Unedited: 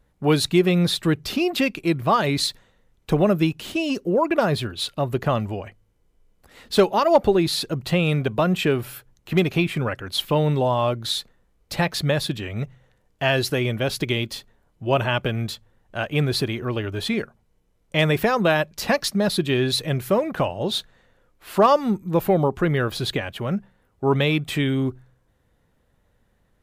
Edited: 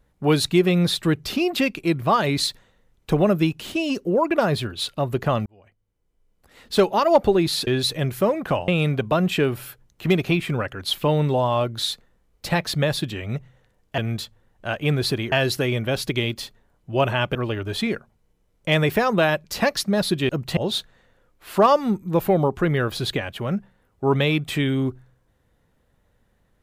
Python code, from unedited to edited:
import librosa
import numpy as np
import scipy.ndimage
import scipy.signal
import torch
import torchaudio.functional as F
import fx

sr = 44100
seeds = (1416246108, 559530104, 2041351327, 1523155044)

y = fx.edit(x, sr, fx.fade_in_span(start_s=5.46, length_s=1.49),
    fx.swap(start_s=7.67, length_s=0.28, other_s=19.56, other_length_s=1.01),
    fx.move(start_s=15.28, length_s=1.34, to_s=13.25), tone=tone)